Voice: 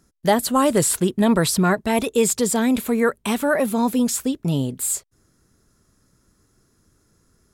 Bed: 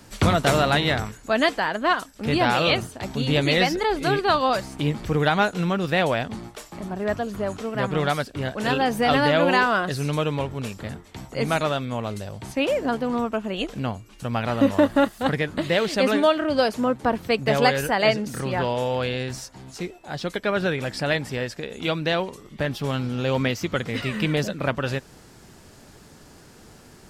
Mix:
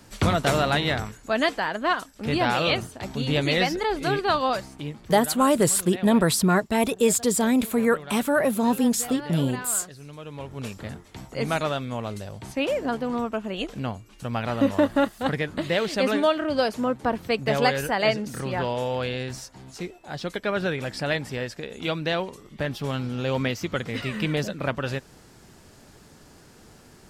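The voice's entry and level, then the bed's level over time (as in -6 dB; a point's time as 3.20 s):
4.85 s, -2.0 dB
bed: 4.50 s -2.5 dB
5.22 s -17 dB
10.19 s -17 dB
10.65 s -2.5 dB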